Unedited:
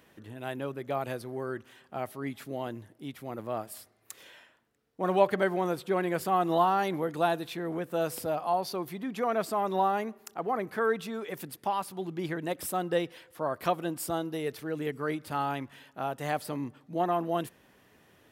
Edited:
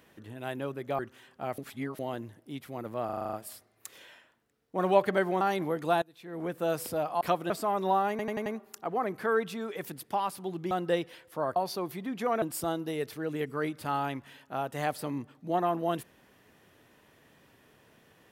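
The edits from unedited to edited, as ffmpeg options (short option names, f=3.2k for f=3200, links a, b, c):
-filter_complex "[0:a]asplit=22[a][b][c][d][e][f][g][h][i][j][k][l][m][n][o][p][q][r][s][t][u][v];[a]atrim=end=0.992[w];[b]atrim=start=1.518:end=2.112[x];[c]atrim=start=2.108:end=2.522,asetpts=PTS-STARTPTS,areverse[y];[d]atrim=start=2.518:end=3.622[z];[e]atrim=start=3.578:end=3.622[aa];[f]atrim=start=3.578:end=3.622[ab];[g]atrim=start=3.578:end=3.622[ac];[h]atrim=start=3.578:end=3.622[ad];[i]atrim=start=3.578:end=3.622[ae];[j]atrim=start=3.578:end=3.622[af];[k]atrim=start=3.578:end=5.662[ag];[l]atrim=start=6.728:end=7.34,asetpts=PTS-STARTPTS,afade=t=out:st=0.608:d=0.004:c=hsin:silence=0.0668344[ah];[m]atrim=start=7.34:end=8.532,asetpts=PTS-STARTPTS,afade=t=in:d=0.45:c=qua:silence=0.0668344[ai];[n]atrim=start=13.588:end=13.882[aj];[o]atrim=start=9.388:end=10.082[ak];[p]atrim=start=9.988:end=10.082[al];[q]atrim=start=9.988:end=10.082[am];[r]atrim=start=9.988:end=10.082[an];[s]atrim=start=9.988:end=12.242[ao];[t]atrim=start=12.738:end=13.592[ap];[u]atrim=start=8.528:end=9.392[aq];[v]atrim=start=13.878[ar];[w][x]acrossfade=d=0.004:c1=hsin:c2=hsin[as];[as][y]acrossfade=d=0.004:c1=hsin:c2=hsin[at];[at][z]acrossfade=d=0.004:c1=hsin:c2=hsin[au];[au][aa]acrossfade=d=0.004:c1=hsin:c2=hsin[av];[av][ab]acrossfade=d=0.004:c1=hsin:c2=hsin[aw];[aw][ac]acrossfade=d=0.004:c1=hsin:c2=hsin[ax];[ax][ad]acrossfade=d=0.004:c1=hsin:c2=hsin[ay];[ay][ae]acrossfade=d=0.004:c1=hsin:c2=hsin[az];[az][af]acrossfade=d=0.004:c1=hsin:c2=hsin[ba];[ba][ag]acrossfade=d=0.004:c1=hsin:c2=hsin[bb];[ah][ai]concat=n=2:v=0:a=1[bc];[bb][bc]acrossfade=d=0.004:c1=hsin:c2=hsin[bd];[bd][aj]acrossfade=d=0.004:c1=hsin:c2=hsin[be];[be][ak]acrossfade=d=0.004:c1=hsin:c2=hsin[bf];[bf][al]acrossfade=d=0.004:c1=hsin:c2=hsin[bg];[bg][am]acrossfade=d=0.004:c1=hsin:c2=hsin[bh];[bh][an]acrossfade=d=0.004:c1=hsin:c2=hsin[bi];[bi][ao]acrossfade=d=0.004:c1=hsin:c2=hsin[bj];[bj][ap]acrossfade=d=0.004:c1=hsin:c2=hsin[bk];[bk][aq]acrossfade=d=0.004:c1=hsin:c2=hsin[bl];[bl][ar]acrossfade=d=0.004:c1=hsin:c2=hsin"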